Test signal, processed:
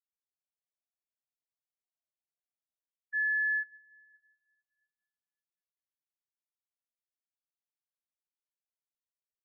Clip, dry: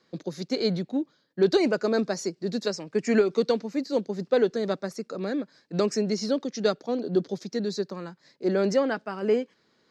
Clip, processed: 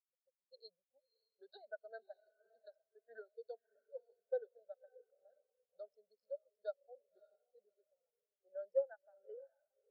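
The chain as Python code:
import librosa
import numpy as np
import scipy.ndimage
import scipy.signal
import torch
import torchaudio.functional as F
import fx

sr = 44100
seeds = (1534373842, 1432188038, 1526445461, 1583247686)

p1 = fx.wiener(x, sr, points=25)
p2 = scipy.signal.sosfilt(scipy.signal.butter(2, 760.0, 'highpass', fs=sr, output='sos'), p1)
p3 = fx.fixed_phaser(p2, sr, hz=1600.0, stages=8)
p4 = p3 + fx.echo_diffused(p3, sr, ms=588, feedback_pct=46, wet_db=-8.0, dry=0)
p5 = fx.spectral_expand(p4, sr, expansion=2.5)
y = p5 * 10.0 ** (-6.0 / 20.0)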